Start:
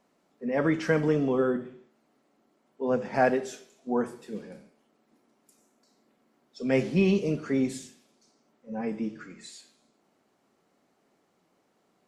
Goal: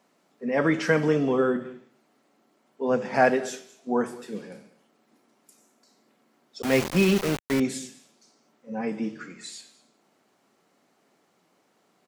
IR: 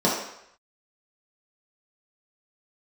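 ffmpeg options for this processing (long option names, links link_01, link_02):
-filter_complex "[0:a]highpass=120,aecho=1:1:207:0.0891,asettb=1/sr,asplit=3[link_01][link_02][link_03];[link_01]atrim=end=6.624[link_04];[link_02]atrim=start=6.62:end=7.6,asetpts=PTS-STARTPTS,afade=type=in:duration=0.004:curve=qsin,afade=type=out:start_time=0.976:duration=0.004:curve=qsin,aeval=exprs='val(0)*gte(abs(val(0)),0.0335)':channel_layout=same[link_05];[link_03]atrim=start=7.596[link_06];[link_04][link_05]acrossfade=duration=0.004:curve1=hsin:curve2=qsin[link_07];[link_07][link_06]acrossfade=duration=0.004:curve1=qsin:curve2=hsin,equalizer=frequency=290:width=0.33:gain=-4,volume=6dB"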